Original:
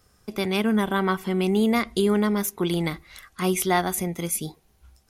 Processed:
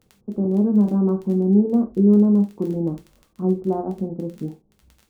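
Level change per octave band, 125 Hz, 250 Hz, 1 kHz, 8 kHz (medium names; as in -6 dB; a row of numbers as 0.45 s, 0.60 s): +6.0 dB, +6.5 dB, -8.5 dB, under -25 dB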